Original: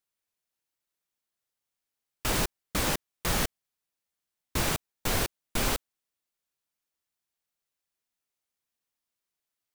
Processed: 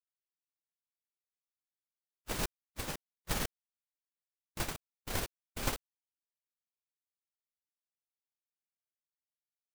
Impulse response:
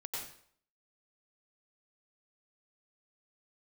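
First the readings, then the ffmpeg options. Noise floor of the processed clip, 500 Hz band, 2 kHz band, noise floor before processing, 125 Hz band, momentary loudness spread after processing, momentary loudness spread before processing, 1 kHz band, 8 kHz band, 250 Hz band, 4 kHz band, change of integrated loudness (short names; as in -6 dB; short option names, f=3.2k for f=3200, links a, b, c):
under -85 dBFS, -9.0 dB, -9.5 dB, under -85 dBFS, -9.0 dB, 9 LU, 5 LU, -9.5 dB, -9.5 dB, -9.5 dB, -9.5 dB, -9.0 dB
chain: -af "agate=range=-59dB:threshold=-24dB:ratio=16:detection=peak,volume=2dB"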